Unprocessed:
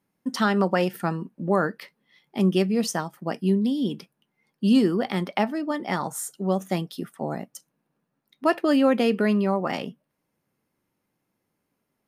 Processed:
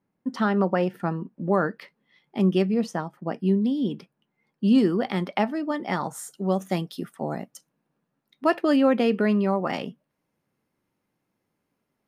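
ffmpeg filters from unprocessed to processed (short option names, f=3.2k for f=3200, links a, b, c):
-af "asetnsamples=n=441:p=0,asendcmd='1.37 lowpass f 3000;2.74 lowpass f 1400;3.4 lowpass f 2400;4.78 lowpass f 4800;6.28 lowpass f 11000;7.51 lowpass f 6200;8.76 lowpass f 3500;9.44 lowpass f 6400',lowpass=f=1.4k:p=1"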